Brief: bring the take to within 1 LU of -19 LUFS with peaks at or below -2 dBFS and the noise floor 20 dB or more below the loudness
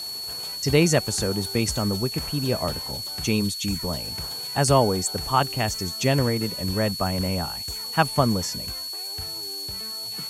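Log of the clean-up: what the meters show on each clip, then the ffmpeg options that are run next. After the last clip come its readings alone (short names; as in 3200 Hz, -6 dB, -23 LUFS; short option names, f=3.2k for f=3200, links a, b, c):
steady tone 4400 Hz; tone level -31 dBFS; noise floor -33 dBFS; noise floor target -45 dBFS; loudness -24.5 LUFS; peak -5.0 dBFS; loudness target -19.0 LUFS
-> -af "bandreject=f=4.4k:w=30"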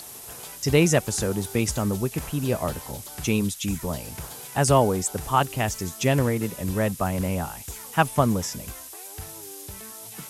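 steady tone none; noise floor -41 dBFS; noise floor target -45 dBFS
-> -af "afftdn=nr=6:nf=-41"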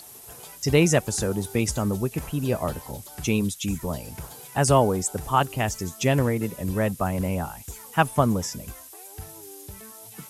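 noise floor -45 dBFS; loudness -25.0 LUFS; peak -5.5 dBFS; loudness target -19.0 LUFS
-> -af "volume=6dB,alimiter=limit=-2dB:level=0:latency=1"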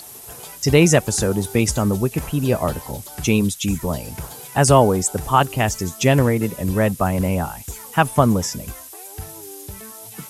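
loudness -19.0 LUFS; peak -2.0 dBFS; noise floor -39 dBFS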